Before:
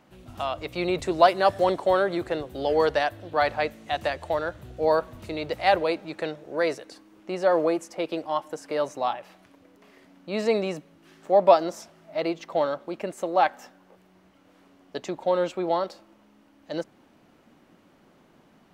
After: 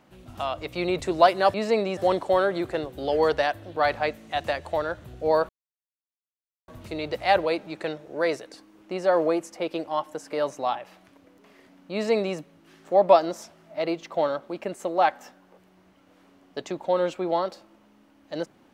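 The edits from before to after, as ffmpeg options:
-filter_complex "[0:a]asplit=4[a][b][c][d];[a]atrim=end=1.542[e];[b]atrim=start=10.308:end=10.742[f];[c]atrim=start=1.538:end=5.06,asetpts=PTS-STARTPTS,afade=t=out:st=3.518:d=0.004:c=hsin,apad=pad_dur=1.19[g];[d]atrim=start=5.06,asetpts=PTS-STARTPTS,afade=t=in:d=0.004:c=hsin[h];[e][f]acrossfade=d=0.004:c1=hsin:c2=hsin[i];[g][h]concat=n=2:v=0:a=1[j];[i][j]acrossfade=d=0.004:c1=hsin:c2=hsin"

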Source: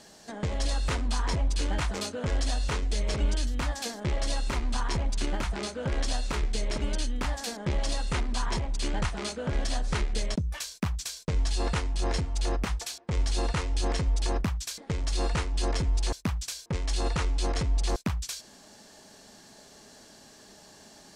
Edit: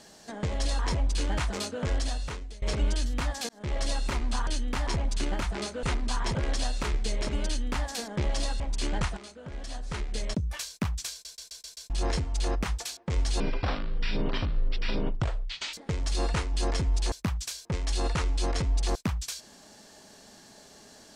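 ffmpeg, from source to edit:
-filter_complex "[0:a]asplit=18[a][b][c][d][e][f][g][h][i][j][k][l][m][n][o][p][q][r];[a]atrim=end=0.792[s];[b]atrim=start=1.198:end=3.03,asetpts=PTS-STARTPTS,afade=t=out:st=1.122:d=0.71:silence=0.0707946[t];[c]atrim=start=3.03:end=3.9,asetpts=PTS-STARTPTS,afade=t=in:d=0.004:c=hsin:silence=0.0707946,afade=t=out:st=0.866:d=0.004:c=hsin[u];[d]atrim=start=3.9:end=4.882,asetpts=PTS-STARTPTS,afade=t=in:d=0.29[v];[e]atrim=start=6.948:end=7.352[w];[f]atrim=start=4.878:end=5.842[x];[g]atrim=start=8.088:end=8.612[y];[h]atrim=start=5.838:end=8.092[z];[i]atrim=start=8.608:end=9.18,asetpts=PTS-STARTPTS,afade=t=out:st=0.568:d=0.004:c=hsin:silence=0.237137[aa];[j]atrim=start=9.18:end=11.262,asetpts=PTS-STARTPTS,afade=t=in:d=1.26:c=qua:silence=0.237137[ab];[k]atrim=start=11.128:end=11.262[ac];[l]atrim=start=11.128:end=11.262[ad];[m]atrim=start=11.128:end=11.262[ae];[n]atrim=start=11.128:end=11.262[af];[o]atrim=start=11.128:end=11.262[ag];[p]atrim=start=11.908:end=13.414[ah];[q]atrim=start=13.41:end=14.74,asetpts=PTS-STARTPTS,asetrate=25137,aresample=44100,atrim=end_sample=102900,asetpts=PTS-STARTPTS[ai];[r]atrim=start=14.736[aj];[t][u][v]concat=n=3:v=0:a=1[ak];[s][ak]acrossfade=d=0.004:c1=hsin:c2=hsin[al];[al][w]acrossfade=d=0.004:c1=hsin:c2=hsin[am];[am][x]acrossfade=d=0.004:c1=hsin:c2=hsin[an];[an][y]acrossfade=d=0.004:c1=hsin:c2=hsin[ao];[ao][z]acrossfade=d=0.004:c1=hsin:c2=hsin[ap];[aa][ab]concat=n=2:v=0:a=1[aq];[ap][aq]acrossfade=d=0.004:c1=hsin:c2=hsin[ar];[ar][ac]acrossfade=d=0.004:c1=hsin:c2=hsin[as];[as][ad]acrossfade=d=0.004:c1=hsin:c2=hsin[at];[at][ae]acrossfade=d=0.004:c1=hsin:c2=hsin[au];[au][af]acrossfade=d=0.004:c1=hsin:c2=hsin[av];[av][ag]acrossfade=d=0.004:c1=hsin:c2=hsin[aw];[aw][ah]acrossfade=d=0.004:c1=hsin:c2=hsin[ax];[ax][ai]acrossfade=d=0.004:c1=hsin:c2=hsin[ay];[ay][aj]acrossfade=d=0.004:c1=hsin:c2=hsin"

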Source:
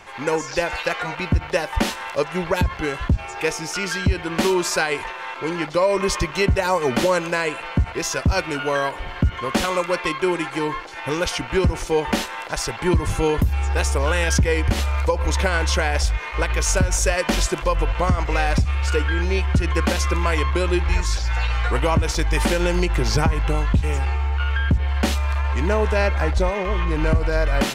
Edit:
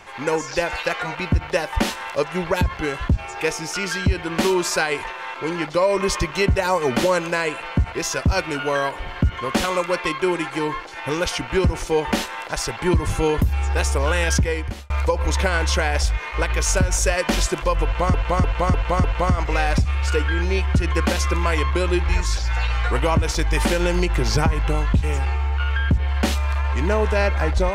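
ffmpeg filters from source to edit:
-filter_complex "[0:a]asplit=6[a][b][c][d][e][f];[a]atrim=end=14.9,asetpts=PTS-STARTPTS,afade=t=out:st=14.33:d=0.57[g];[b]atrim=start=14.9:end=18.142,asetpts=PTS-STARTPTS,afade=t=in:d=0.004:c=hsin[h];[c]atrim=start=17.838:end=18.142[i];[d]atrim=start=17.838:end=18.142[j];[e]atrim=start=17.838:end=18.142[k];[f]atrim=start=17.838[l];[g][h]concat=n=2:v=0:a=1[m];[m][i]acrossfade=d=0.004:c1=hsin:c2=hsin[n];[n][j]acrossfade=d=0.004:c1=hsin:c2=hsin[o];[o][k]acrossfade=d=0.004:c1=hsin:c2=hsin[p];[p][l]acrossfade=d=0.004:c1=hsin:c2=hsin"

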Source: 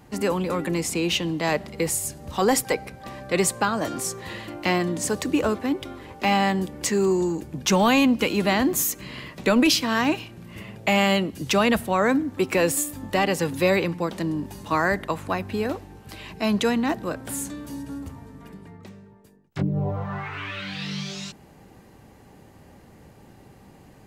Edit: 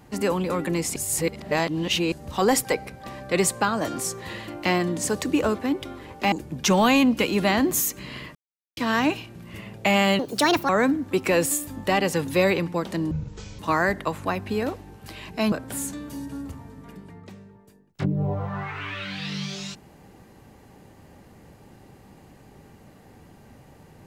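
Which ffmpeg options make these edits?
-filter_complex "[0:a]asplit=11[a][b][c][d][e][f][g][h][i][j][k];[a]atrim=end=0.962[l];[b]atrim=start=0.958:end=2.122,asetpts=PTS-STARTPTS,areverse[m];[c]atrim=start=2.118:end=6.322[n];[d]atrim=start=7.338:end=9.37,asetpts=PTS-STARTPTS,afade=t=out:st=2.028:d=0.004:c=hsin[o];[e]atrim=start=9.37:end=9.79,asetpts=PTS-STARTPTS,volume=0[p];[f]atrim=start=9.79:end=11.214,asetpts=PTS-STARTPTS,afade=t=in:d=0.004:c=hsin[q];[g]atrim=start=11.21:end=11.95,asetpts=PTS-STARTPTS,asetrate=65268,aresample=44100[r];[h]atrim=start=11.946:end=14.374[s];[i]atrim=start=14.37:end=14.62,asetpts=PTS-STARTPTS,asetrate=22932,aresample=44100[t];[j]atrim=start=14.616:end=16.552[u];[k]atrim=start=17.088[v];[l][m]acrossfade=d=0.004:c1=hsin:c2=hsin[w];[w][n]acrossfade=d=0.004:c1=hsin:c2=hsin[x];[o][p][q]concat=n=3:v=0:a=1[y];[x][y]acrossfade=d=0.004:c1=hsin:c2=hsin[z];[z][r]acrossfade=d=0.004:c1=hsin:c2=hsin[aa];[aa][s]acrossfade=d=0.004:c1=hsin:c2=hsin[ab];[ab][t]acrossfade=d=0.004:c1=hsin:c2=hsin[ac];[ac][u]acrossfade=d=0.004:c1=hsin:c2=hsin[ad];[ad][v]acrossfade=d=0.004:c1=hsin:c2=hsin"

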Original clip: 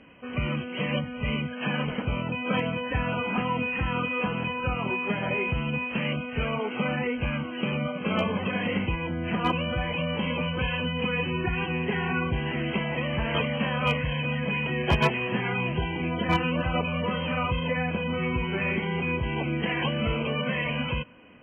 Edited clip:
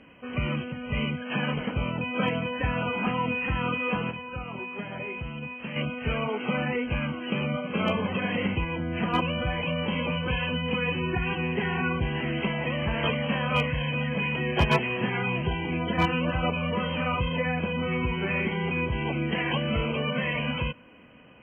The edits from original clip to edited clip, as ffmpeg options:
-filter_complex "[0:a]asplit=4[a][b][c][d];[a]atrim=end=0.722[e];[b]atrim=start=1.028:end=4.422[f];[c]atrim=start=4.418:end=6.072,asetpts=PTS-STARTPTS,volume=-7.5dB[g];[d]atrim=start=6.068[h];[e][f]acrossfade=d=0.004:c1=hsin:c2=hsin[i];[i][g]acrossfade=d=0.004:c1=hsin:c2=hsin[j];[j][h]acrossfade=d=0.004:c1=hsin:c2=hsin"

